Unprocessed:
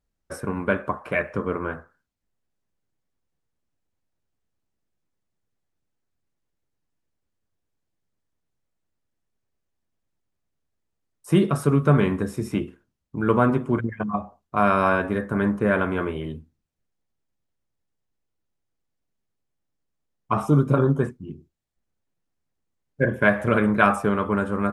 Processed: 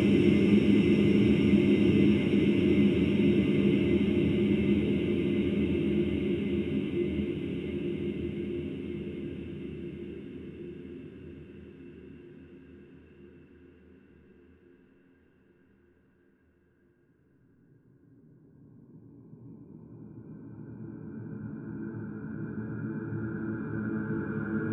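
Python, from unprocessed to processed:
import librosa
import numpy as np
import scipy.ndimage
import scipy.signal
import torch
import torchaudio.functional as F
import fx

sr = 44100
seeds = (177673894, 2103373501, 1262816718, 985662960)

y = fx.env_lowpass(x, sr, base_hz=370.0, full_db=-20.0)
y = fx.paulstretch(y, sr, seeds[0], factor=49.0, window_s=0.5, from_s=12.58)
y = F.gain(torch.from_numpy(y), 3.0).numpy()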